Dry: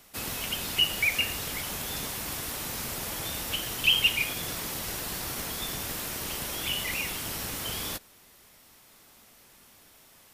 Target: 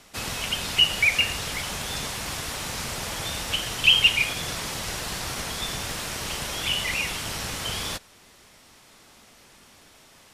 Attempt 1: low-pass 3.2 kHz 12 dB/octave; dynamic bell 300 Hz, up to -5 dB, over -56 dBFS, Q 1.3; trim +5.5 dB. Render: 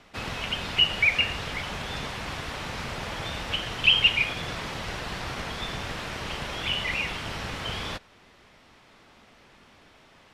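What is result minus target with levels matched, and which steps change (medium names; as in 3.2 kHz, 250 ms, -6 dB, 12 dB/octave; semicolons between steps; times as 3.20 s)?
8 kHz band -11.0 dB
change: low-pass 8.3 kHz 12 dB/octave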